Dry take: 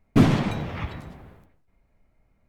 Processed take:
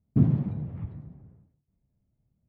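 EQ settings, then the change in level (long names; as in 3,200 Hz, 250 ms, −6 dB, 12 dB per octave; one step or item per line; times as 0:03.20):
resonant band-pass 130 Hz, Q 1.5
0.0 dB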